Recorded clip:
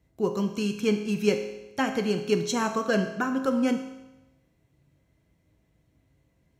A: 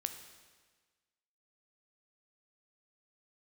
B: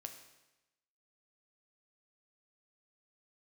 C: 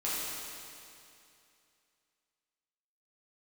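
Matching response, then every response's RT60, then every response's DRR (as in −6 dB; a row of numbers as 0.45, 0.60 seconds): B; 1.4, 1.0, 2.6 seconds; 7.0, 5.0, −9.5 decibels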